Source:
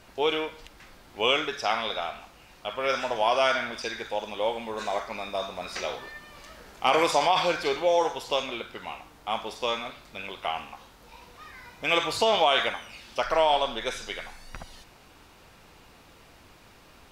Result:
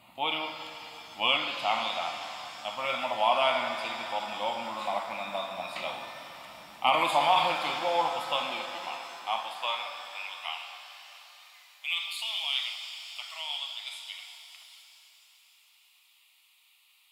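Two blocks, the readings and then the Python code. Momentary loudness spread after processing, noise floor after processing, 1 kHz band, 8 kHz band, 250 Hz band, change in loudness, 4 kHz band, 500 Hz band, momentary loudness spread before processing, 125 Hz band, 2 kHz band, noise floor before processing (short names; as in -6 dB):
18 LU, -63 dBFS, -1.5 dB, -6.0 dB, -7.5 dB, -3.0 dB, -1.0 dB, -7.5 dB, 19 LU, -6.5 dB, -2.5 dB, -54 dBFS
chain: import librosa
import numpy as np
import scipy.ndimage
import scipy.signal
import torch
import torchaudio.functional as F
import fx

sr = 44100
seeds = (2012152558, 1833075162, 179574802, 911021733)

y = fx.filter_sweep_highpass(x, sr, from_hz=170.0, to_hz=3200.0, start_s=8.19, end_s=11.34, q=0.76)
y = fx.fixed_phaser(y, sr, hz=1600.0, stages=6)
y = fx.rev_shimmer(y, sr, seeds[0], rt60_s=3.5, semitones=7, shimmer_db=-8, drr_db=5.5)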